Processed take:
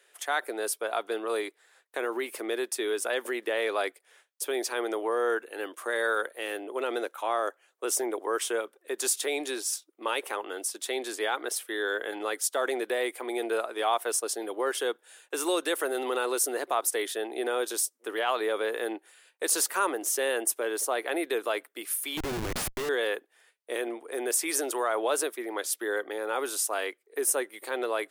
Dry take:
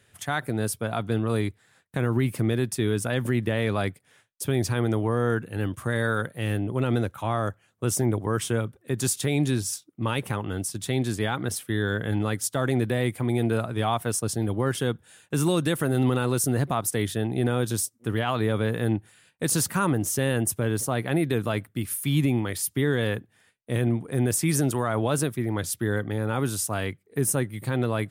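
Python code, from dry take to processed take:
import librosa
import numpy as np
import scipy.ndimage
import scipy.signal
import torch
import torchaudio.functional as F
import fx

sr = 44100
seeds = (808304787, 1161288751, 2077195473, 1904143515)

y = scipy.signal.sosfilt(scipy.signal.butter(6, 370.0, 'highpass', fs=sr, output='sos'), x)
y = fx.schmitt(y, sr, flips_db=-32.0, at=(22.17, 22.89))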